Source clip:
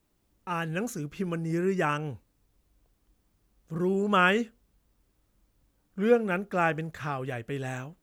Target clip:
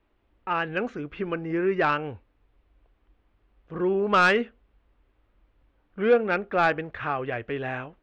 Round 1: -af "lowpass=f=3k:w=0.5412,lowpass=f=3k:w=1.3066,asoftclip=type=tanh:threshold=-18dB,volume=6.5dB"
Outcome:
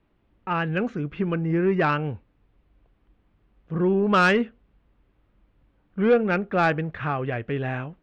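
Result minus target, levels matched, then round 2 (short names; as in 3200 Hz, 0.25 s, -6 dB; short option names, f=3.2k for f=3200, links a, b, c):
125 Hz band +8.0 dB
-af "lowpass=f=3k:w=0.5412,lowpass=f=3k:w=1.3066,equalizer=f=160:w=1.2:g=-11.5,asoftclip=type=tanh:threshold=-18dB,volume=6.5dB"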